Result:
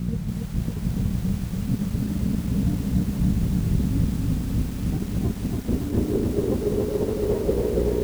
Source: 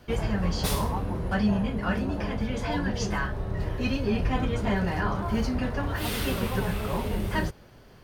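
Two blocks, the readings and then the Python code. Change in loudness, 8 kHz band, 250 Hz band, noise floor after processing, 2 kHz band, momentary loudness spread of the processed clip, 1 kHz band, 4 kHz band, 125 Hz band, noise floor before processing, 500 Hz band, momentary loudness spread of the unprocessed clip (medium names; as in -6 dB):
+3.5 dB, -1.5 dB, +4.0 dB, -31 dBFS, -12.0 dB, 4 LU, -10.5 dB, -7.0 dB, +5.5 dB, -52 dBFS, +5.0 dB, 4 LU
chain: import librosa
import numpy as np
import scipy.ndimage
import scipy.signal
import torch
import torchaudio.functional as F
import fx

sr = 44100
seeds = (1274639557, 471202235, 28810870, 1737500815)

p1 = fx.dmg_buzz(x, sr, base_hz=60.0, harmonics=9, level_db=-39.0, tilt_db=-4, odd_only=False)
p2 = fx.filter_sweep_lowpass(p1, sr, from_hz=180.0, to_hz=470.0, start_s=4.46, end_s=6.97, q=3.7)
p3 = fx.low_shelf(p2, sr, hz=240.0, db=-4.0)
p4 = p3 + fx.echo_feedback(p3, sr, ms=599, feedback_pct=58, wet_db=-19.5, dry=0)
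p5 = fx.over_compress(p4, sr, threshold_db=-31.0, ratio=-0.5)
p6 = fx.dynamic_eq(p5, sr, hz=410.0, q=5.6, threshold_db=-49.0, ratio=4.0, max_db=5)
p7 = fx.dmg_noise_colour(p6, sr, seeds[0], colour='pink', level_db=-52.0)
p8 = fx.echo_crushed(p7, sr, ms=284, feedback_pct=80, bits=8, wet_db=-3.0)
y = p8 * librosa.db_to_amplitude(4.0)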